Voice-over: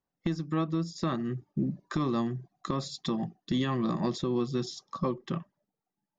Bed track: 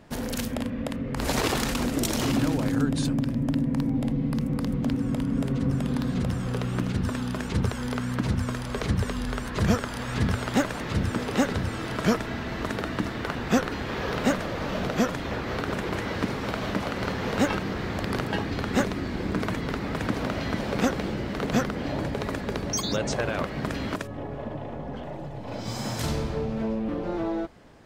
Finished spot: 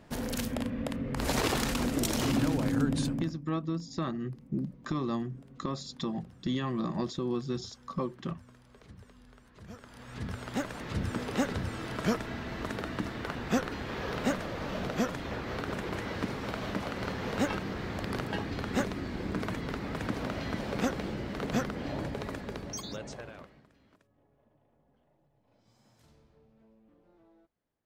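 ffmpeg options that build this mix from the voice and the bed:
ffmpeg -i stem1.wav -i stem2.wav -filter_complex "[0:a]adelay=2950,volume=-3dB[link_01];[1:a]volume=17dB,afade=type=out:start_time=2.99:duration=0.4:silence=0.0707946,afade=type=in:start_time=9.68:duration=1.46:silence=0.0944061,afade=type=out:start_time=22.02:duration=1.64:silence=0.0375837[link_02];[link_01][link_02]amix=inputs=2:normalize=0" out.wav

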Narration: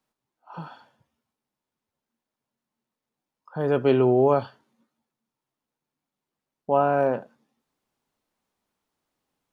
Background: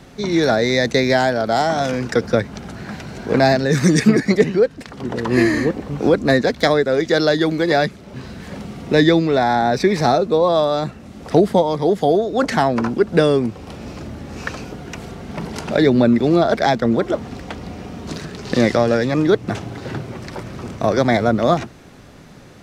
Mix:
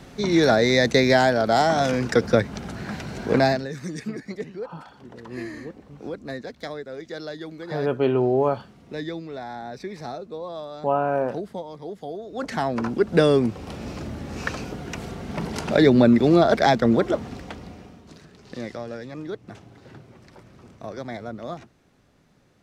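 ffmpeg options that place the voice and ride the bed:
ffmpeg -i stem1.wav -i stem2.wav -filter_complex "[0:a]adelay=4150,volume=-1.5dB[link_01];[1:a]volume=15.5dB,afade=type=out:start_time=3.27:duration=0.46:silence=0.141254,afade=type=in:start_time=12.18:duration=1.25:silence=0.141254,afade=type=out:start_time=16.95:duration=1.09:silence=0.149624[link_02];[link_01][link_02]amix=inputs=2:normalize=0" out.wav

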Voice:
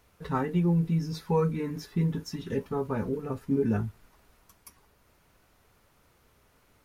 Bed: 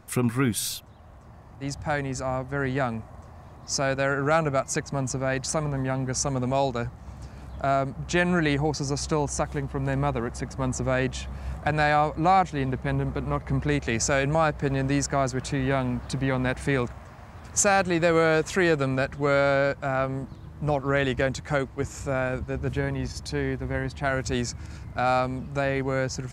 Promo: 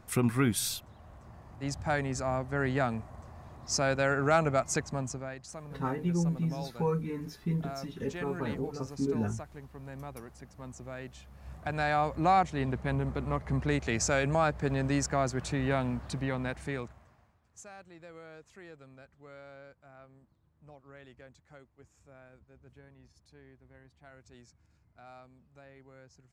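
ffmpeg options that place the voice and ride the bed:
ffmpeg -i stem1.wav -i stem2.wav -filter_complex "[0:a]adelay=5500,volume=-4.5dB[link_01];[1:a]volume=10dB,afade=type=out:start_time=4.76:duration=0.6:silence=0.188365,afade=type=in:start_time=11.3:duration=0.9:silence=0.223872,afade=type=out:start_time=15.83:duration=1.56:silence=0.0630957[link_02];[link_01][link_02]amix=inputs=2:normalize=0" out.wav

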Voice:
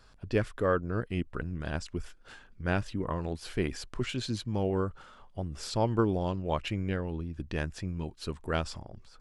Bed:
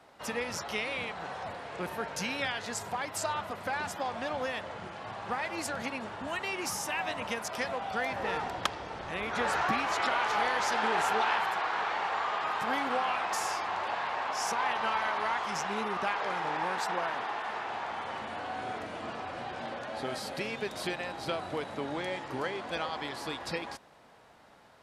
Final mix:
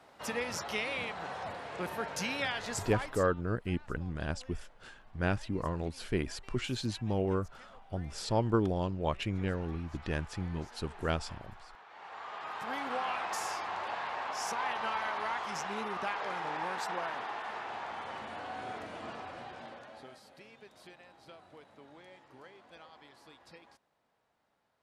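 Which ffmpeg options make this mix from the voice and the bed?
ffmpeg -i stem1.wav -i stem2.wav -filter_complex "[0:a]adelay=2550,volume=-1.5dB[link_01];[1:a]volume=18.5dB,afade=type=out:start_time=2.89:duration=0.39:silence=0.0749894,afade=type=in:start_time=11.88:duration=1.19:silence=0.105925,afade=type=out:start_time=19.1:duration=1.1:silence=0.16788[link_02];[link_01][link_02]amix=inputs=2:normalize=0" out.wav

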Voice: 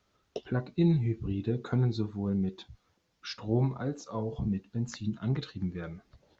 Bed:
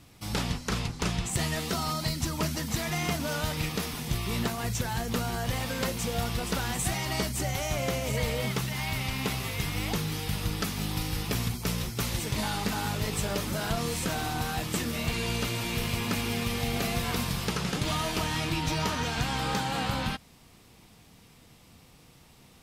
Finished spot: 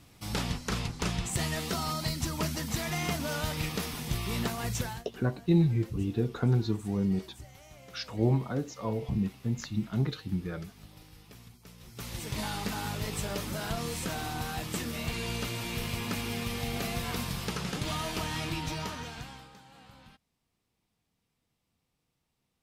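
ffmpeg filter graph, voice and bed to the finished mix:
ffmpeg -i stem1.wav -i stem2.wav -filter_complex "[0:a]adelay=4700,volume=1.5dB[link_01];[1:a]volume=16dB,afade=type=out:start_time=4.82:duration=0.22:silence=0.1,afade=type=in:start_time=11.79:duration=0.6:silence=0.125893,afade=type=out:start_time=18.49:duration=1.01:silence=0.0944061[link_02];[link_01][link_02]amix=inputs=2:normalize=0" out.wav

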